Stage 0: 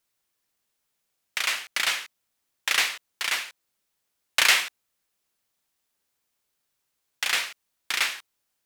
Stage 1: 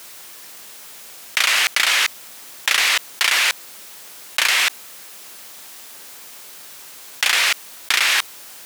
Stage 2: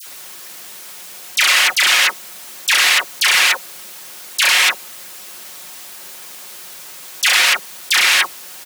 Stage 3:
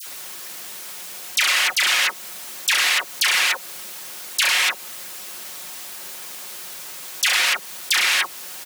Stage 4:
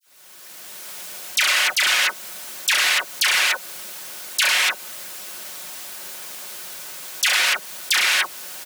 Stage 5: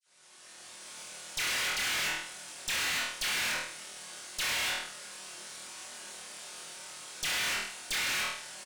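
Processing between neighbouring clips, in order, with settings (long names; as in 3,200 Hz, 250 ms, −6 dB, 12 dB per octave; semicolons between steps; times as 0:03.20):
high-pass filter 300 Hz 6 dB per octave; envelope flattener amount 100%; level −1.5 dB
comb filter 5.5 ms, depth 44%; all-pass dispersion lows, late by 69 ms, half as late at 1,500 Hz; level +3.5 dB
downward compressor 2.5 to 1, threshold −18 dBFS, peak gain reduction 6 dB
fade in at the beginning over 0.98 s; hollow resonant body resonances 610/1,500 Hz, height 8 dB, ringing for 95 ms
flutter between parallel walls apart 4.3 metres, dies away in 0.52 s; downsampling to 22,050 Hz; tube saturation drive 23 dB, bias 0.7; level −6.5 dB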